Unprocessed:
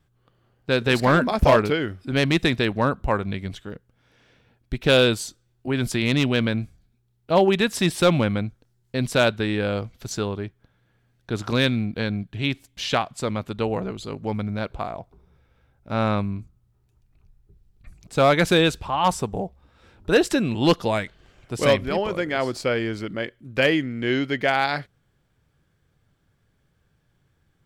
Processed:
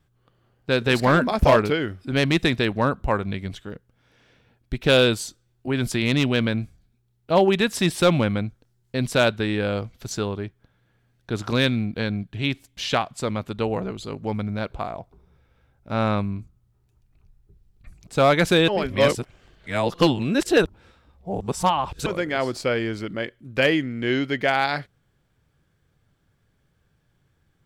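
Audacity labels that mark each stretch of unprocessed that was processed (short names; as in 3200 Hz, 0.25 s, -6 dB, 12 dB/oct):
18.680000	22.060000	reverse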